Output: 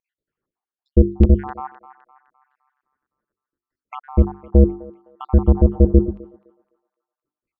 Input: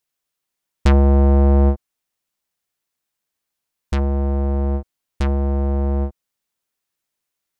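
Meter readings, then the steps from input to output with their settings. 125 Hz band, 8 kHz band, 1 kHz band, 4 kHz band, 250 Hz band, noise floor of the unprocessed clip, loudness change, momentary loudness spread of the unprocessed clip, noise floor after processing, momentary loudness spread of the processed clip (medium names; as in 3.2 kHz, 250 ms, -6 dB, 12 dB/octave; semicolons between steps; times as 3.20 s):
0.0 dB, no reading, -3.5 dB, under -10 dB, +2.0 dB, -81 dBFS, +1.5 dB, 12 LU, under -85 dBFS, 18 LU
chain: random holes in the spectrogram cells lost 72%; peak limiter -15.5 dBFS, peak gain reduction 6.5 dB; resonant low shelf 530 Hz +9.5 dB, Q 1.5; hum notches 50/100/150/200/250/300/350/400/450 Hz; vibrato 2.5 Hz 19 cents; LFO low-pass saw down 0.81 Hz 290–2700 Hz; band-passed feedback delay 256 ms, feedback 49%, band-pass 1.6 kHz, level -12 dB; trim +1 dB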